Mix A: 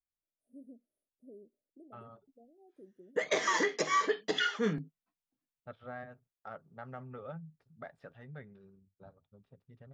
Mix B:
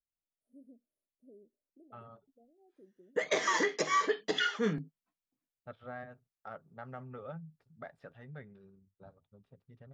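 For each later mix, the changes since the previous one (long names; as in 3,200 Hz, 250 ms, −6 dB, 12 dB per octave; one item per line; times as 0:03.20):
first voice −4.5 dB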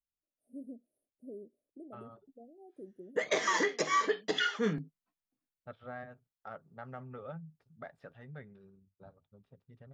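first voice +11.0 dB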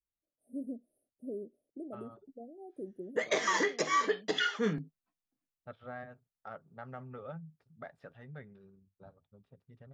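first voice +6.0 dB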